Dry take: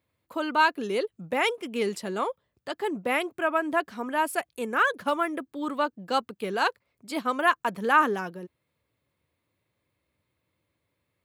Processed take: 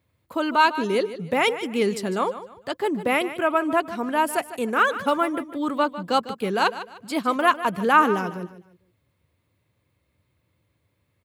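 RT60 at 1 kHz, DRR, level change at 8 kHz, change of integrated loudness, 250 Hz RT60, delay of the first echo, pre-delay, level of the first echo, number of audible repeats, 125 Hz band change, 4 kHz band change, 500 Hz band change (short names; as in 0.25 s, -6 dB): none, none, +4.0 dB, +4.0 dB, none, 0.151 s, none, -13.5 dB, 3, n/a, +4.0 dB, +5.0 dB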